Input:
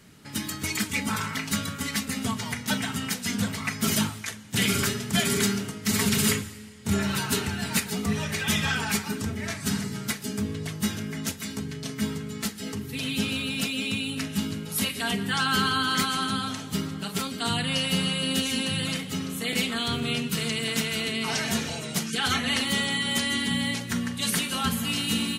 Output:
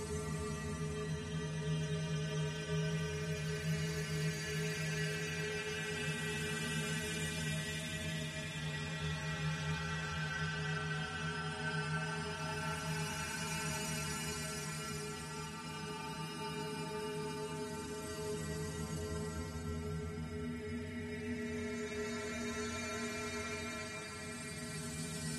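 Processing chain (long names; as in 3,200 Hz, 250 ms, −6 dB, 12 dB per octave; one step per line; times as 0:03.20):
downward compressor 12 to 1, threshold −27 dBFS, peak gain reduction 9 dB
stiff-string resonator 77 Hz, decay 0.35 s, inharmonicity 0.008
extreme stretch with random phases 16×, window 0.25 s, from 0:08.07
level −1.5 dB
AAC 32 kbit/s 48,000 Hz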